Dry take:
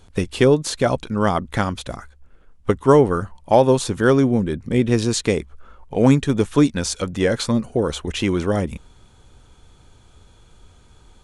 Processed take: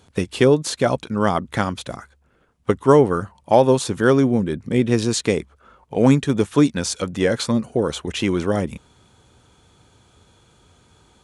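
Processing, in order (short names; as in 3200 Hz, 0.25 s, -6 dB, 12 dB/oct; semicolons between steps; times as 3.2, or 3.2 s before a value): HPF 95 Hz 12 dB/oct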